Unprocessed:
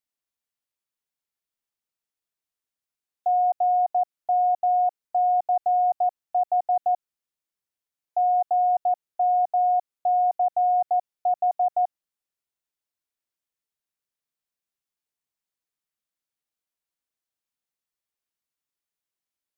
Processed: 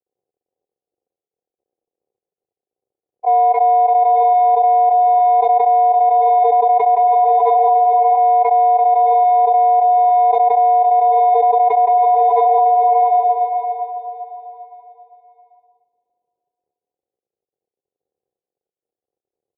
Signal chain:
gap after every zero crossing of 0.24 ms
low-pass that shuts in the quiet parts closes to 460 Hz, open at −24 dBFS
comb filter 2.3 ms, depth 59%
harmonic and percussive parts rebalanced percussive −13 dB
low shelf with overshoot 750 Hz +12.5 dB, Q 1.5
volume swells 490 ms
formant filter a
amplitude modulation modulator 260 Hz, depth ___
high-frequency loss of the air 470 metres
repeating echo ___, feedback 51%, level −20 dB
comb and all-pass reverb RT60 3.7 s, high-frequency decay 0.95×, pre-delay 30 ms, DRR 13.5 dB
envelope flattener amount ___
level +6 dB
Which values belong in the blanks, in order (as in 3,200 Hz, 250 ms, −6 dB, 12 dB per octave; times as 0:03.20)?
30%, 296 ms, 100%